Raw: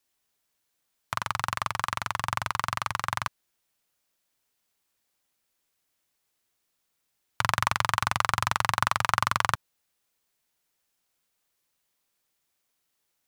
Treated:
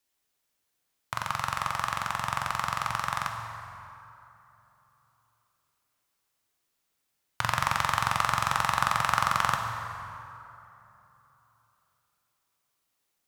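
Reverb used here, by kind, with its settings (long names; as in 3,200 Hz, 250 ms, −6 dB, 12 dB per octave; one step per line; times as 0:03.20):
dense smooth reverb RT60 3.2 s, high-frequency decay 0.55×, DRR 2.5 dB
level −2.5 dB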